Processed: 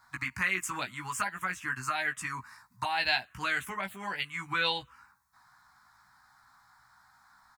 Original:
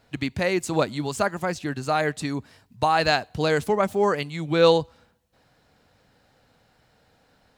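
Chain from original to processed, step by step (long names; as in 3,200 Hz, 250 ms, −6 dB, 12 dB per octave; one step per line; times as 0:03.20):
low shelf with overshoot 710 Hz −13.5 dB, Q 3
in parallel at +1 dB: downward compressor, threshold −32 dBFS, peak gain reduction 16.5 dB
on the sum: double-tracking delay 16 ms −4 dB
phaser swept by the level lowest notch 480 Hz, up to 1,200 Hz, full sweep at −15 dBFS
level −5 dB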